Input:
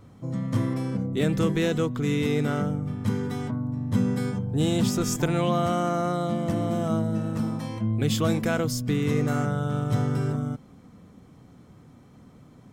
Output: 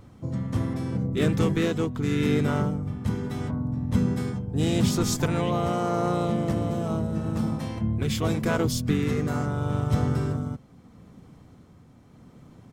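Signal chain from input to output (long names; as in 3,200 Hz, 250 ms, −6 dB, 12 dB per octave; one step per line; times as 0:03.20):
pitch-shifted copies added −7 semitones −6 dB, −3 semitones −9 dB
amplitude tremolo 0.8 Hz, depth 32%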